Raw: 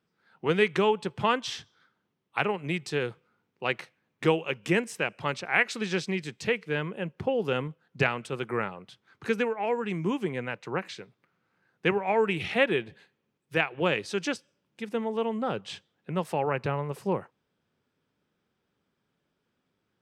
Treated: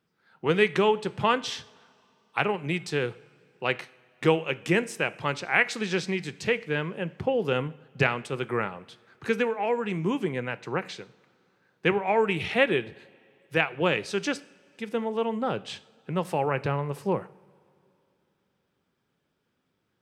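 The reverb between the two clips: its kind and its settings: two-slope reverb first 0.52 s, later 2.9 s, from -18 dB, DRR 15 dB; trim +1.5 dB

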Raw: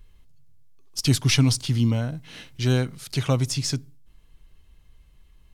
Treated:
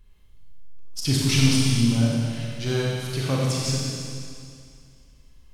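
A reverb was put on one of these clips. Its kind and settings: Schroeder reverb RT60 2.3 s, combs from 30 ms, DRR -4.5 dB; trim -4.5 dB

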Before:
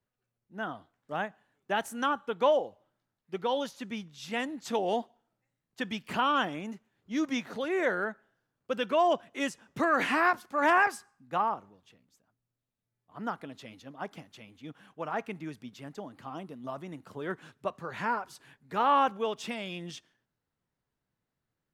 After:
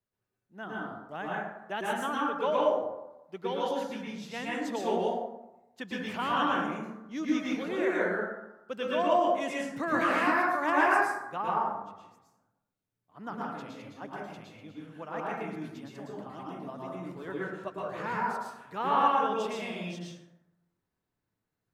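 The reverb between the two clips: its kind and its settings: plate-style reverb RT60 0.95 s, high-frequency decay 0.45×, pre-delay 100 ms, DRR -5 dB; trim -6 dB

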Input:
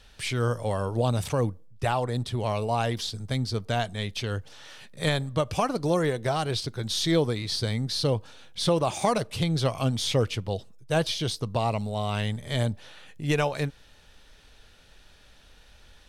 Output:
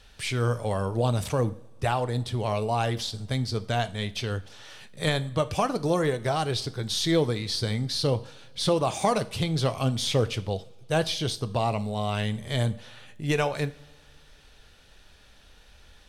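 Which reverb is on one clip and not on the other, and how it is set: two-slope reverb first 0.43 s, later 2.3 s, from -21 dB, DRR 12 dB

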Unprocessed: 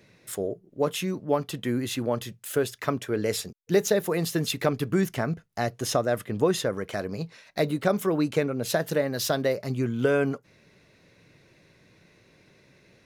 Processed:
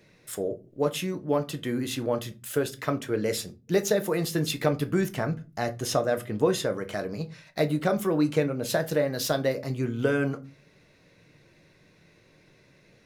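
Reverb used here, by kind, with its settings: simulated room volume 120 m³, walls furnished, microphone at 0.53 m; trim -1.5 dB

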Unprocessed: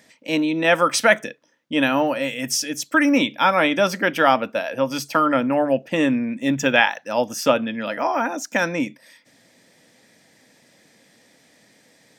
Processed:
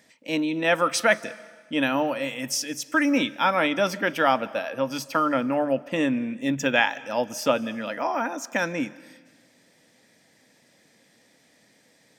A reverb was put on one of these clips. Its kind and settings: algorithmic reverb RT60 1.4 s, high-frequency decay 1×, pre-delay 115 ms, DRR 20 dB; trim -4.5 dB

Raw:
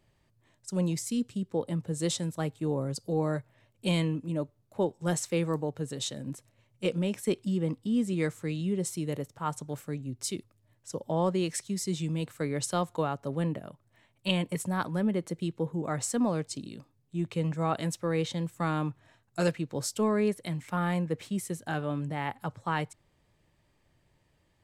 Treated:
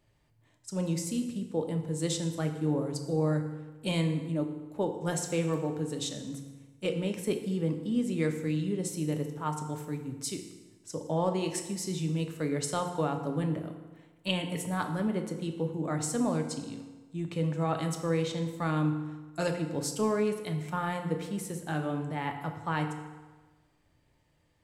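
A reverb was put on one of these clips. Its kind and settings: FDN reverb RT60 1.3 s, low-frequency decay 0.95×, high-frequency decay 0.75×, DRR 4.5 dB; trim -2 dB

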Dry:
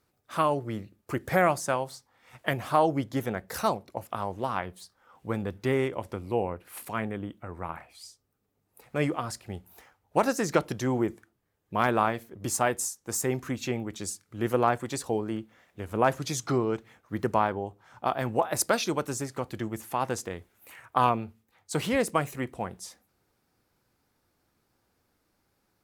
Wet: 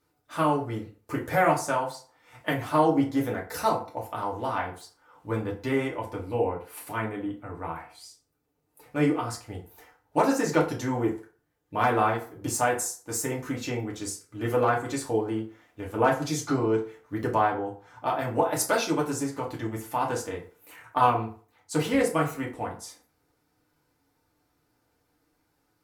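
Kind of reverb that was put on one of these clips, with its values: FDN reverb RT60 0.42 s, low-frequency decay 0.8×, high-frequency decay 0.65×, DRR -3 dB; trim -3.5 dB

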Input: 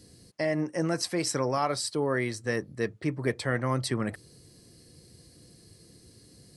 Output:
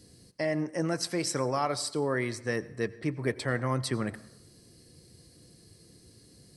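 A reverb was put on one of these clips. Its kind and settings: plate-style reverb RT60 0.83 s, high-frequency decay 0.6×, pre-delay 75 ms, DRR 18 dB; trim -1.5 dB

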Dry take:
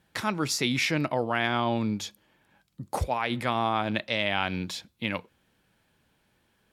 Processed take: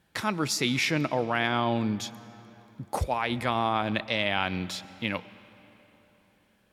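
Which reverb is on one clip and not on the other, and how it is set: algorithmic reverb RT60 3.8 s, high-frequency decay 0.7×, pre-delay 75 ms, DRR 17.5 dB

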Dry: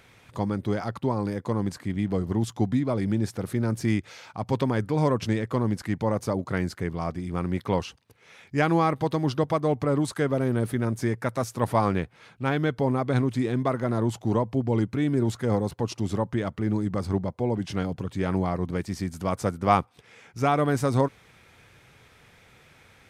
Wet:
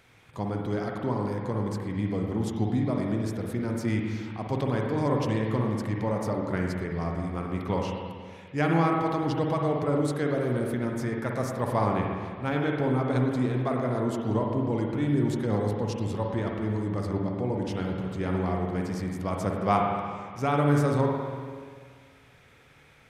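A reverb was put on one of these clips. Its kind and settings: spring tank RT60 1.9 s, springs 48/55 ms, chirp 70 ms, DRR 0 dB; trim -4.5 dB

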